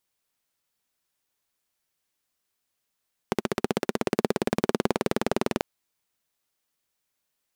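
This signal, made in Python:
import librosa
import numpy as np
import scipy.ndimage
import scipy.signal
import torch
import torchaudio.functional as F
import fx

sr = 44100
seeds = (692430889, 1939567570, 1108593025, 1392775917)

y = fx.engine_single_rev(sr, seeds[0], length_s=2.29, rpm=1800, resonances_hz=(230.0, 380.0), end_rpm=2500)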